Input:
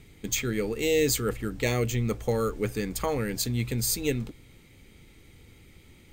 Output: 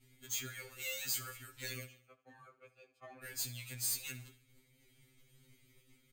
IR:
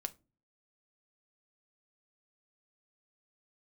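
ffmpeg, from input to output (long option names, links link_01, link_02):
-filter_complex "[0:a]asettb=1/sr,asplit=3[link_01][link_02][link_03];[link_01]atrim=end=1.864[link_04];[link_02]atrim=start=1.86:end=3.24,asetpts=PTS-STARTPTS,afade=type=in:duration=0.004:curve=qsin,afade=type=out:start_time=1.376:duration=0.004:curve=qsin,asplit=3[link_05][link_06][link_07];[link_05]bandpass=frequency=730:width_type=q:width=8,volume=0dB[link_08];[link_06]bandpass=frequency=1090:width_type=q:width=8,volume=-6dB[link_09];[link_07]bandpass=frequency=2440:width_type=q:width=8,volume=-9dB[link_10];[link_08][link_09][link_10]amix=inputs=3:normalize=0[link_11];[link_03]atrim=start=3.236[link_12];[link_04][link_11]acrossfade=duration=0.004:curve1=hsin:curve2=qsin[link_13];[link_13][link_12]acrossfade=duration=0.004:curve1=qsin:curve2=hsin,acrossover=split=690|950[link_14][link_15][link_16];[link_14]acompressor=threshold=-45dB:ratio=4[link_17];[link_15]aeval=exprs='val(0)*sin(2*PI*1000*n/s)':channel_layout=same[link_18];[link_17][link_18][link_16]amix=inputs=3:normalize=0,asoftclip=type=tanh:threshold=-27.5dB,crystalizer=i=1:c=0,agate=range=-33dB:threshold=-47dB:ratio=3:detection=peak,aecho=1:1:73|146|219|292:0.141|0.0706|0.0353|0.0177,afftfilt=real='re*2.45*eq(mod(b,6),0)':imag='im*2.45*eq(mod(b,6),0)':win_size=2048:overlap=0.75,volume=-6.5dB"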